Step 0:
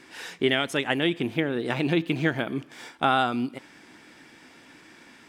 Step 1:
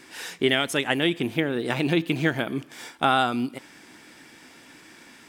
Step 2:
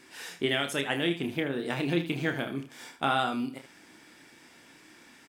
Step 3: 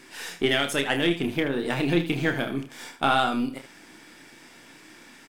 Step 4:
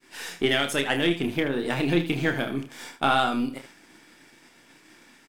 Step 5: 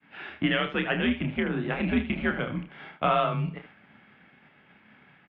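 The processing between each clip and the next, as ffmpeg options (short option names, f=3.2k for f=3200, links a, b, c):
-af "highshelf=f=7.2k:g=10,volume=1dB"
-af "aecho=1:1:29|77:0.447|0.266,volume=-6.5dB"
-af "aeval=exprs='if(lt(val(0),0),0.708*val(0),val(0))':c=same,volume=6.5dB"
-af "agate=range=-33dB:threshold=-44dB:ratio=3:detection=peak"
-af "highpass=f=200:t=q:w=0.5412,highpass=f=200:t=q:w=1.307,lowpass=f=3.1k:t=q:w=0.5176,lowpass=f=3.1k:t=q:w=0.7071,lowpass=f=3.1k:t=q:w=1.932,afreqshift=-97,volume=-1.5dB"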